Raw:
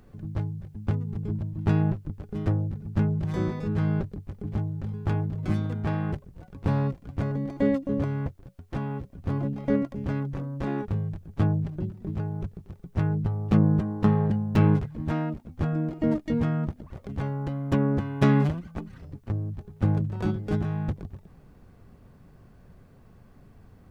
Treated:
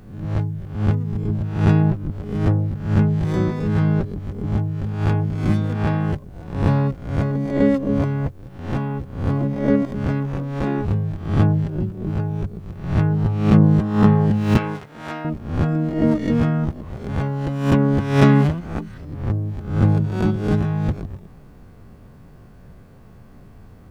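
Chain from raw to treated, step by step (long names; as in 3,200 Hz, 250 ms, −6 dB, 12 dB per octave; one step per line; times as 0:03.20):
peak hold with a rise ahead of every peak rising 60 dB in 0.60 s
0:14.57–0:15.25: high-pass filter 1,000 Hz 6 dB per octave
level +6 dB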